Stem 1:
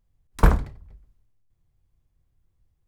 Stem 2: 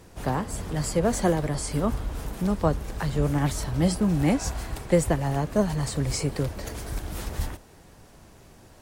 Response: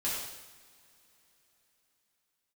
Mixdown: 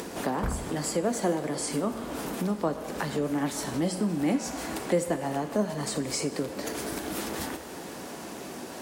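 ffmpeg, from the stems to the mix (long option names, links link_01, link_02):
-filter_complex "[0:a]volume=-6dB[link_01];[1:a]highpass=72,lowshelf=frequency=160:width_type=q:width=1.5:gain=-13,volume=-6.5dB,asplit=3[link_02][link_03][link_04];[link_03]volume=-12.5dB[link_05];[link_04]apad=whole_len=126691[link_06];[link_01][link_06]sidechaincompress=threshold=-45dB:ratio=3:attack=16:release=223[link_07];[2:a]atrim=start_sample=2205[link_08];[link_05][link_08]afir=irnorm=-1:irlink=0[link_09];[link_07][link_02][link_09]amix=inputs=3:normalize=0,highpass=53,acompressor=mode=upward:threshold=-23dB:ratio=2.5"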